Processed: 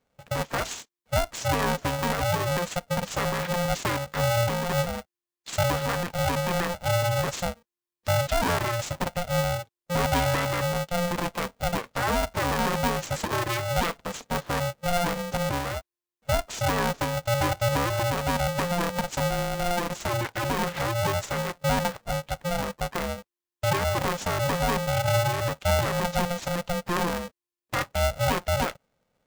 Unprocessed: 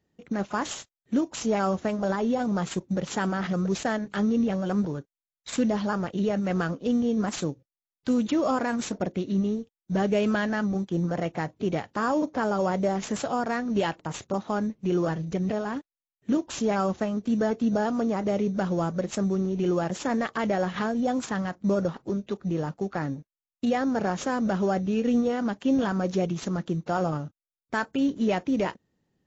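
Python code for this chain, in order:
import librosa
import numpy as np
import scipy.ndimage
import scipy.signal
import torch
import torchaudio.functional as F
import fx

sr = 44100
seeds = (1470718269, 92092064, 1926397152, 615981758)

y = fx.halfwave_gain(x, sr, db=-3.0, at=(19.3, 20.62))
y = y * np.sign(np.sin(2.0 * np.pi * 350.0 * np.arange(len(y)) / sr))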